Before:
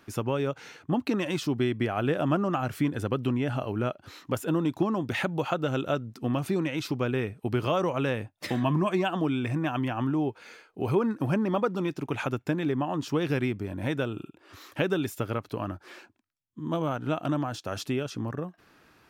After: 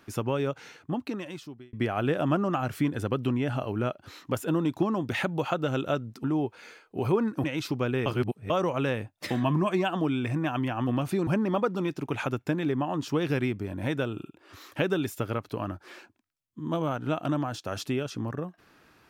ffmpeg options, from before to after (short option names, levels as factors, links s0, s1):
-filter_complex "[0:a]asplit=8[s0][s1][s2][s3][s4][s5][s6][s7];[s0]atrim=end=1.73,asetpts=PTS-STARTPTS,afade=t=out:st=0.48:d=1.25[s8];[s1]atrim=start=1.73:end=6.242,asetpts=PTS-STARTPTS,afade=t=in:d=0.004:c=hsin[s9];[s2]atrim=start=10.068:end=11.272[s10];[s3]atrim=start=6.638:end=7.262[s11];[s4]atrim=start=7.258:end=7.702,asetpts=PTS-STARTPTS,areverse[s12];[s5]atrim=start=7.698:end=10.072[s13];[s6]atrim=start=6.238:end=6.642[s14];[s7]atrim=start=11.268[s15];[s8][s9]concat=n=2:v=0:a=1[s16];[s16][s10]acrossfade=d=0.004:c1=hsin:c2=hsin[s17];[s17][s11]acrossfade=d=0.004:c1=hsin:c2=hsin[s18];[s18][s12]acrossfade=d=0.004:c1=hsin:c2=hsin[s19];[s19][s13]acrossfade=d=0.004:c1=hsin:c2=hsin[s20];[s20][s14]acrossfade=d=0.004:c1=hsin:c2=hsin[s21];[s21][s15]acrossfade=d=0.004:c1=hsin:c2=hsin"